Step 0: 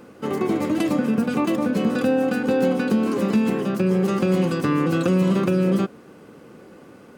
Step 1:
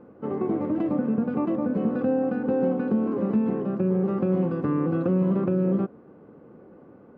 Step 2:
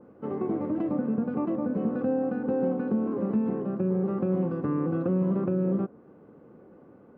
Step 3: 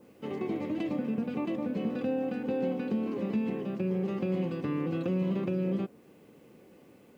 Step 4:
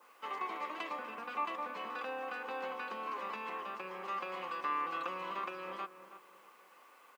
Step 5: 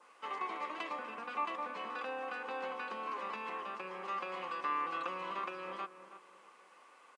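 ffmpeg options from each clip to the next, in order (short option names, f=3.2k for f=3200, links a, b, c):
-af "lowpass=1k,volume=-3.5dB"
-af "adynamicequalizer=threshold=0.00447:dfrequency=2100:dqfactor=0.7:tfrequency=2100:tqfactor=0.7:attack=5:release=100:ratio=0.375:range=3:mode=cutabove:tftype=highshelf,volume=-3dB"
-af "aexciter=amount=9:drive=7.1:freq=2.1k,volume=-4dB"
-filter_complex "[0:a]highpass=f=1.1k:t=q:w=3.8,asplit=2[a][b];[b]adelay=322,lowpass=f=1.6k:p=1,volume=-11.5dB,asplit=2[c][d];[d]adelay=322,lowpass=f=1.6k:p=1,volume=0.34,asplit=2[e][f];[f]adelay=322,lowpass=f=1.6k:p=1,volume=0.34,asplit=2[g][h];[h]adelay=322,lowpass=f=1.6k:p=1,volume=0.34[i];[a][c][e][g][i]amix=inputs=5:normalize=0,volume=1dB"
-af "aresample=22050,aresample=44100"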